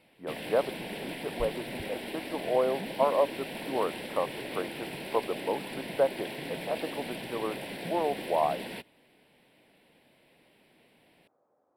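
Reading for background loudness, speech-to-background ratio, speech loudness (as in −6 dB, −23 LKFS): −38.5 LKFS, 6.0 dB, −32.5 LKFS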